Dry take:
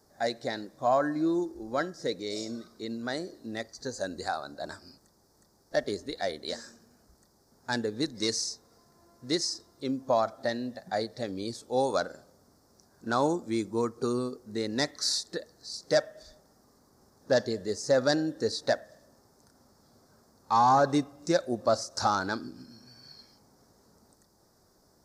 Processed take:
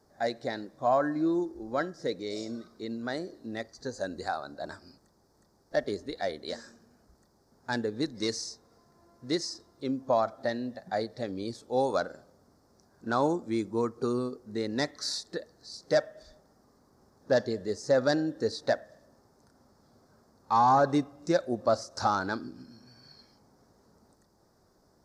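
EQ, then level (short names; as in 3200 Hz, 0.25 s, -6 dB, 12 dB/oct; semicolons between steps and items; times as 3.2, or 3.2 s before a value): high shelf 4600 Hz -9 dB; 0.0 dB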